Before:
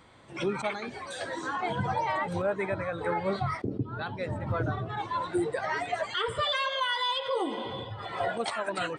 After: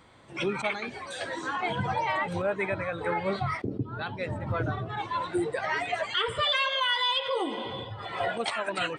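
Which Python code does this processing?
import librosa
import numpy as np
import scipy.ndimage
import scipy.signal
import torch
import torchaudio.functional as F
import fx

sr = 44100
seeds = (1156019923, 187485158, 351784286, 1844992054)

y = fx.dynamic_eq(x, sr, hz=2600.0, q=1.6, threshold_db=-47.0, ratio=4.0, max_db=7)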